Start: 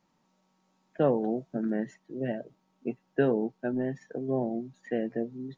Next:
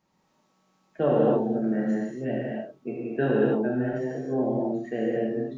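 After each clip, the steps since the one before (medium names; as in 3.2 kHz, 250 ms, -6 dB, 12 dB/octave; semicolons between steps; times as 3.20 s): gated-style reverb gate 320 ms flat, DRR -6 dB; trim -2 dB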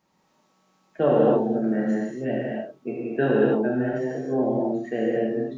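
bass shelf 150 Hz -5.5 dB; trim +3.5 dB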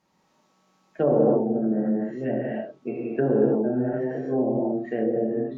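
low-pass that closes with the level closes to 720 Hz, closed at -19.5 dBFS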